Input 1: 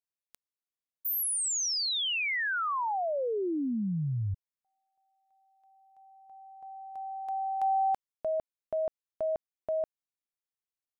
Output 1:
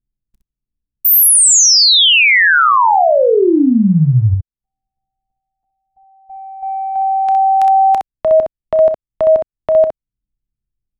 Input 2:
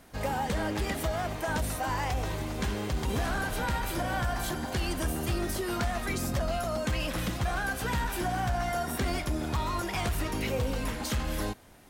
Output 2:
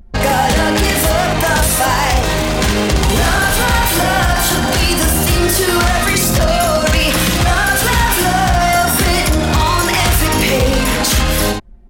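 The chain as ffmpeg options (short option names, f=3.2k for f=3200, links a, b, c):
-filter_complex "[0:a]acrossover=split=300|1800|3100[a][b][c][d];[a]acompressor=mode=upward:threshold=-54dB:ratio=1.5:attack=56:release=178:knee=2.83:detection=peak[e];[e][b][c][d]amix=inputs=4:normalize=0,apsyclip=23dB,anlmdn=10000,highshelf=f=2.1k:g=7.5,acompressor=threshold=-10dB:ratio=4:attack=0.4:release=185:knee=6:detection=peak,aecho=1:1:31|63:0.15|0.562"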